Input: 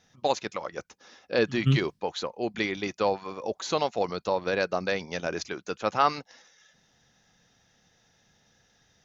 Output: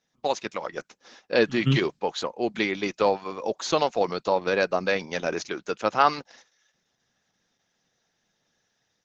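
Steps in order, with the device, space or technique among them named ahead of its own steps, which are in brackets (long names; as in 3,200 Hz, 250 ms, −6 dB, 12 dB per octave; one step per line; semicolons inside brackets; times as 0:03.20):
video call (high-pass filter 150 Hz 12 dB per octave; automatic gain control gain up to 4 dB; noise gate −50 dBFS, range −11 dB; Opus 12 kbit/s 48,000 Hz)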